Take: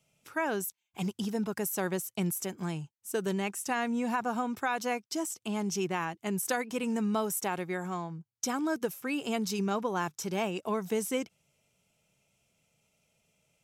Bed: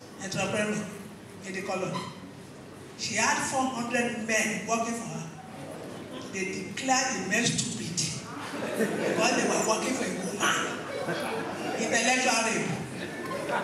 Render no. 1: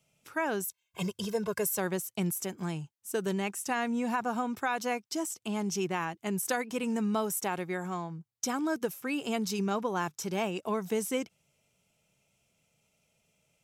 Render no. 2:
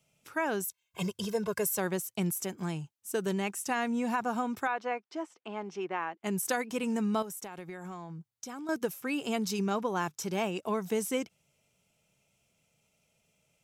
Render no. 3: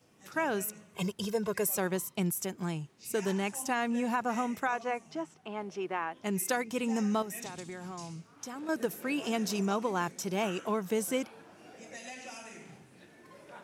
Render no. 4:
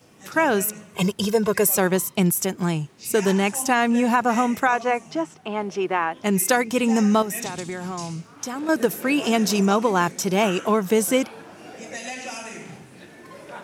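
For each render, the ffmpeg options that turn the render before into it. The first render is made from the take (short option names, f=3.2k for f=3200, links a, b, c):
-filter_complex "[0:a]asettb=1/sr,asplit=3[a][b][c];[a]atrim=end=0.684[d];[b]atrim=start=0.68:end=1.78,asetpts=PTS-STARTPTS,afade=t=in:d=0.004:c=qsin,afade=t=out:st=1.096:d=0.004:c=qsin,aecho=1:1:1.9:0.99,atrim=end_sample=48510[e];[c]atrim=start=1.776[f];[d][e]acrossfade=d=0.004:c1=hsin:c2=qsin[g];[g][f]acrossfade=d=0.004:c1=qsin:c2=hsin"
-filter_complex "[0:a]asettb=1/sr,asplit=3[a][b][c];[a]atrim=end=4.674[d];[b]atrim=start=4.67:end=6.24,asetpts=PTS-STARTPTS,afade=t=in:d=0.004:c=qsin,afade=t=out:st=1.566:d=0.004:c=qsin,highpass=380,lowpass=2.2k[e];[c]atrim=start=6.236[f];[d][e]acrossfade=d=0.004:c1=hsin:c2=qsin[g];[g][f]acrossfade=d=0.004:c1=qsin:c2=hsin,asettb=1/sr,asplit=3[h][i][j];[h]atrim=end=7.224[k];[i]atrim=start=7.22:end=8.69,asetpts=PTS-STARTPTS,afade=t=in:d=0.004:c=qsin,afade=t=out:st=1.466:d=0.004:c=qsin,acompressor=threshold=-38dB:ratio=8:attack=3.2:release=140:knee=1:detection=peak[l];[j]atrim=start=8.686[m];[k][l]acrossfade=d=0.004:c1=hsin:c2=qsin[n];[n][m]acrossfade=d=0.004:c1=qsin:c2=hsin"
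-filter_complex "[1:a]volume=-20.5dB[a];[0:a][a]amix=inputs=2:normalize=0"
-af "volume=11.5dB"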